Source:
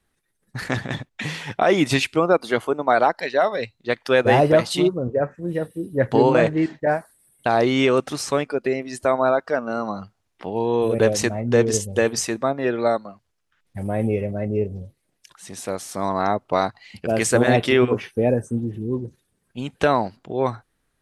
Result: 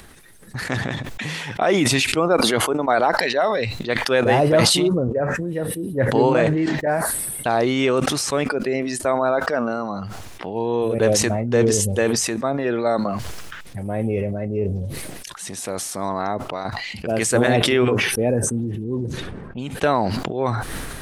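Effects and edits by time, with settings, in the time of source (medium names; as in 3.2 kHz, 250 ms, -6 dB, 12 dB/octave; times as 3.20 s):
16.11–16.65 s: fade out, to -11 dB
18.84–19.70 s: level-controlled noise filter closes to 920 Hz, open at -25 dBFS
whole clip: upward compressor, threshold -25 dBFS; dynamic bell 9.8 kHz, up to +3 dB, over -44 dBFS, Q 1.3; decay stretcher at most 26 dB/s; trim -1.5 dB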